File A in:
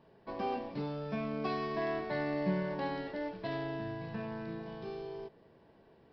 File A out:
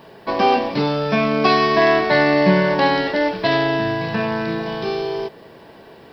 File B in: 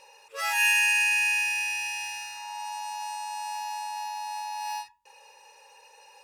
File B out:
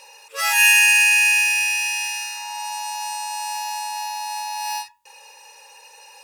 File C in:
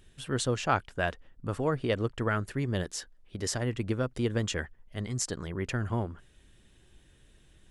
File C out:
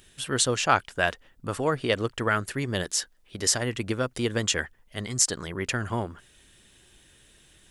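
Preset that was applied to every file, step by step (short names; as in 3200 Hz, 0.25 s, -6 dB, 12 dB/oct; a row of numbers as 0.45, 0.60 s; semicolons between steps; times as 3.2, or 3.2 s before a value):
tilt +2 dB/oct; normalise peaks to -3 dBFS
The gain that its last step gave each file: +21.0, +6.0, +5.5 dB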